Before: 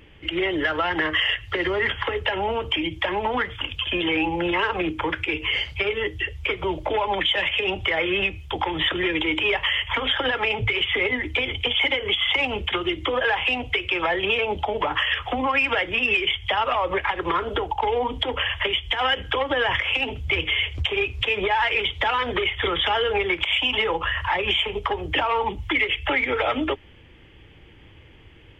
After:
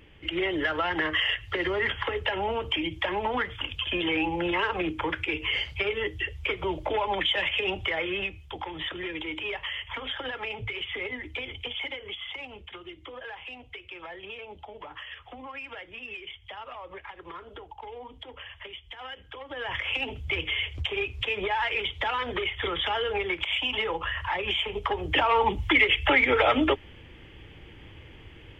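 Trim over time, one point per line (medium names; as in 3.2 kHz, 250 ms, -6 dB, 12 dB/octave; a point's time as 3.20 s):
7.68 s -4 dB
8.64 s -11 dB
11.59 s -11 dB
12.66 s -18.5 dB
19.40 s -18.5 dB
19.85 s -6 dB
24.54 s -6 dB
25.48 s +1.5 dB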